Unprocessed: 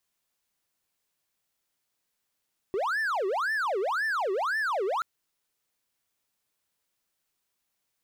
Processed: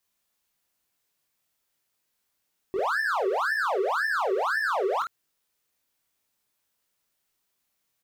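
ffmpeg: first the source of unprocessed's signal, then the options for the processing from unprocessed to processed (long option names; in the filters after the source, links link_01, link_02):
-f lavfi -i "aevalsrc='0.0668*(1-4*abs(mod((1076.5*t-703.5/(2*PI*1.9)*sin(2*PI*1.9*t))+0.25,1)-0.5))':duration=2.28:sample_rate=44100"
-filter_complex "[0:a]equalizer=frequency=14000:width=7.9:gain=6.5,asplit=2[link_01][link_02];[link_02]aecho=0:1:21|49:0.562|0.596[link_03];[link_01][link_03]amix=inputs=2:normalize=0"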